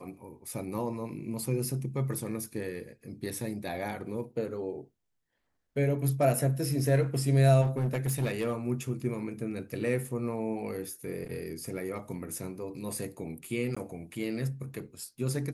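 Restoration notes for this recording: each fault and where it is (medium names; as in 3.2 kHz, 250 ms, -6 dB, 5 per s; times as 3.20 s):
7.61–8.53 s: clipped -24.5 dBFS
13.75–13.77 s: dropout 15 ms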